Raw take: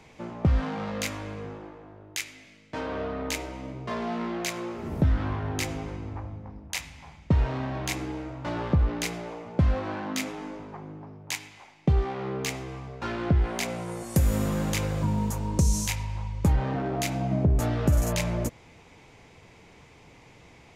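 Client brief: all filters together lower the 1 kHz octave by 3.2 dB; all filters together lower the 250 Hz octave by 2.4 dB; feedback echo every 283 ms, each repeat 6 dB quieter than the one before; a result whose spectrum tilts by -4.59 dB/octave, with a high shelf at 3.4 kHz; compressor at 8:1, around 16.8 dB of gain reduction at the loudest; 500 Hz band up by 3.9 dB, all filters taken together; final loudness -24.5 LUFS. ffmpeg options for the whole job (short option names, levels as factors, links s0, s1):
-af "equalizer=f=250:t=o:g=-5.5,equalizer=f=500:t=o:g=8.5,equalizer=f=1000:t=o:g=-8.5,highshelf=f=3400:g=6,acompressor=threshold=0.0158:ratio=8,aecho=1:1:283|566|849|1132|1415|1698:0.501|0.251|0.125|0.0626|0.0313|0.0157,volume=5.62"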